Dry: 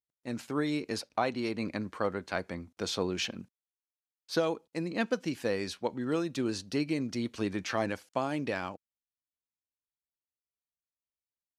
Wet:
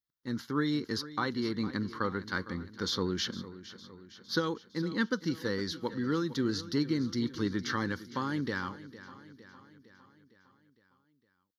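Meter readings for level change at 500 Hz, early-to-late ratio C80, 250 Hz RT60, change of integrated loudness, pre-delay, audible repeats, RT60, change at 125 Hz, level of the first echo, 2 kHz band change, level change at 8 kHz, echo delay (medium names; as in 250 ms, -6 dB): -3.5 dB, no reverb, no reverb, 0.0 dB, no reverb, 4, no reverb, +3.0 dB, -15.5 dB, +1.5 dB, -2.0 dB, 458 ms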